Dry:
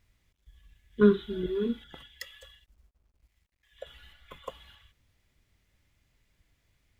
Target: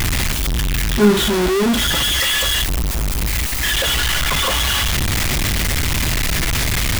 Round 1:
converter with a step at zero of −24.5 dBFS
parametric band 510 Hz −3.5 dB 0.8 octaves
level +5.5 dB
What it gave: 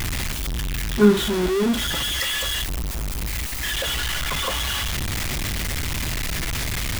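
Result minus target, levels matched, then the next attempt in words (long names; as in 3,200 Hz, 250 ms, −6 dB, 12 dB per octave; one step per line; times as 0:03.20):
converter with a step at zero: distortion −5 dB
converter with a step at zero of −17 dBFS
parametric band 510 Hz −3.5 dB 0.8 octaves
level +5.5 dB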